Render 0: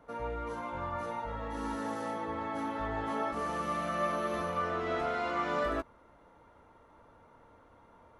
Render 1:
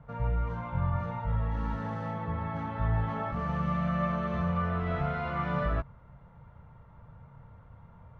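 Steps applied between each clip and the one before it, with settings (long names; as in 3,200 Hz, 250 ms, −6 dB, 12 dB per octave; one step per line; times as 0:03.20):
low-pass filter 2,800 Hz 12 dB per octave
low shelf with overshoot 210 Hz +12.5 dB, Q 3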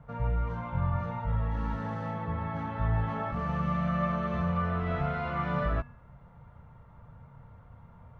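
tuned comb filter 240 Hz, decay 0.55 s, harmonics odd, mix 60%
level +8 dB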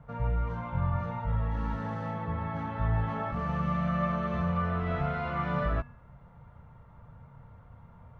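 no processing that can be heard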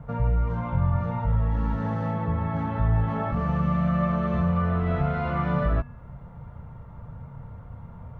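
tilt shelving filter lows +3.5 dB, about 740 Hz
in parallel at +3 dB: downward compressor, threshold −34 dBFS, peak gain reduction 13 dB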